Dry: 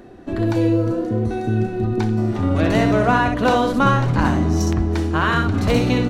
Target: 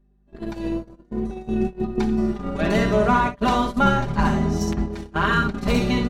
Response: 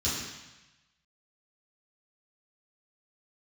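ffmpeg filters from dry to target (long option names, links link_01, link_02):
-af "aeval=exprs='val(0)+0.0447*(sin(2*PI*50*n/s)+sin(2*PI*2*50*n/s)/2+sin(2*PI*3*50*n/s)/3+sin(2*PI*4*50*n/s)/4+sin(2*PI*5*50*n/s)/5)':channel_layout=same,aecho=1:1:5:0.92,agate=range=-30dB:threshold=-17dB:ratio=16:detection=peak,volume=-4.5dB"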